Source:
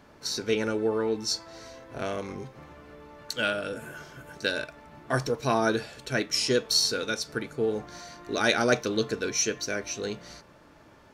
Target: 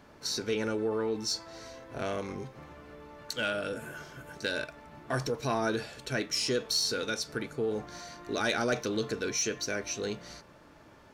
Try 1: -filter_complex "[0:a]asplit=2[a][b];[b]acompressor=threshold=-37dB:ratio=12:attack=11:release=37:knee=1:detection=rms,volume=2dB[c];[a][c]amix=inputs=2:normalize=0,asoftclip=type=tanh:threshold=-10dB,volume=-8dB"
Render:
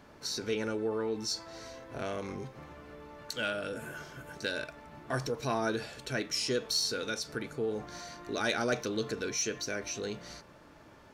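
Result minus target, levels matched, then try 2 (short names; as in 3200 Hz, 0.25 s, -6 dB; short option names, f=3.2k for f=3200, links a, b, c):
compressor: peak gain reduction +7 dB
-filter_complex "[0:a]asplit=2[a][b];[b]acompressor=threshold=-29.5dB:ratio=12:attack=11:release=37:knee=1:detection=rms,volume=2dB[c];[a][c]amix=inputs=2:normalize=0,asoftclip=type=tanh:threshold=-10dB,volume=-8dB"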